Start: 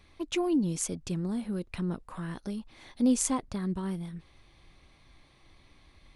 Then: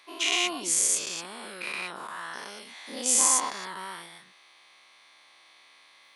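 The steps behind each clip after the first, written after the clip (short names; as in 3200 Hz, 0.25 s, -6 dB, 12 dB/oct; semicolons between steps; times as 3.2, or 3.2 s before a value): spectral dilation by 0.24 s; HPF 910 Hz 12 dB/oct; gain +3 dB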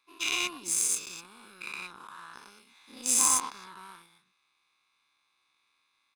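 comb 0.8 ms, depth 75%; power-law curve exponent 1.4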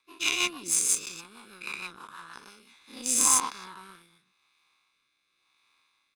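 rotary speaker horn 6.3 Hz, later 0.9 Hz, at 2.39; gain +5 dB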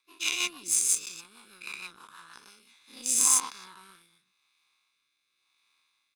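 high shelf 2200 Hz +8 dB; gain -7.5 dB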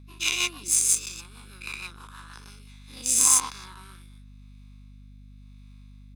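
hum 50 Hz, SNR 18 dB; gain +3.5 dB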